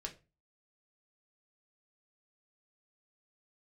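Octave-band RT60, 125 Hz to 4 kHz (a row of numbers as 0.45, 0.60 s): 0.45, 0.40, 0.30, 0.30, 0.25, 0.25 s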